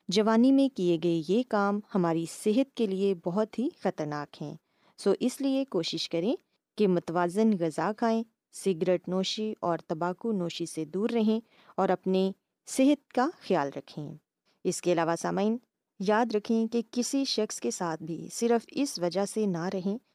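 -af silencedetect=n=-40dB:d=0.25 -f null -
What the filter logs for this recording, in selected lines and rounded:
silence_start: 4.55
silence_end: 4.99 | silence_duration: 0.44
silence_start: 6.36
silence_end: 6.78 | silence_duration: 0.42
silence_start: 8.23
silence_end: 8.55 | silence_duration: 0.32
silence_start: 11.40
silence_end: 11.78 | silence_duration: 0.39
silence_start: 12.32
silence_end: 12.68 | silence_duration: 0.36
silence_start: 14.14
silence_end: 14.65 | silence_duration: 0.51
silence_start: 15.57
silence_end: 16.00 | silence_duration: 0.43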